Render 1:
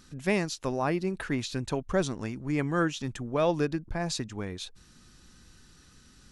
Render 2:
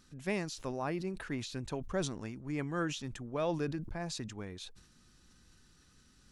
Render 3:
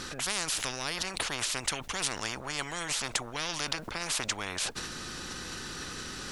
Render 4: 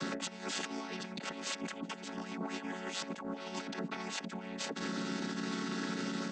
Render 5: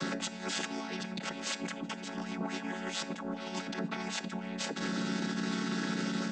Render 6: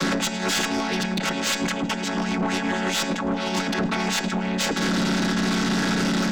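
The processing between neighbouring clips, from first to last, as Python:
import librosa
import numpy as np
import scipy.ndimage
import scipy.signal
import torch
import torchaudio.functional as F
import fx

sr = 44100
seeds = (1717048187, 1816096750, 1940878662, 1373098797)

y1 = fx.sustainer(x, sr, db_per_s=79.0)
y1 = y1 * 10.0 ** (-8.0 / 20.0)
y2 = fx.high_shelf(y1, sr, hz=5500.0, db=-8.0)
y2 = fx.spectral_comp(y2, sr, ratio=10.0)
y2 = y2 * 10.0 ** (8.5 / 20.0)
y3 = fx.chord_vocoder(y2, sr, chord='minor triad', root=54)
y3 = fx.over_compress(y3, sr, threshold_db=-39.0, ratio=-0.5)
y4 = fx.room_shoebox(y3, sr, seeds[0], volume_m3=2400.0, walls='furnished', distance_m=0.74)
y4 = y4 * 10.0 ** (2.5 / 20.0)
y5 = y4 + 10.0 ** (-20.0 / 20.0) * np.pad(y4, (int(107 * sr / 1000.0), 0))[:len(y4)]
y5 = fx.cheby_harmonics(y5, sr, harmonics=(5, 6), levels_db=(-17, -20), full_scale_db=-22.0)
y5 = fx.fold_sine(y5, sr, drive_db=7, ceiling_db=-18.5)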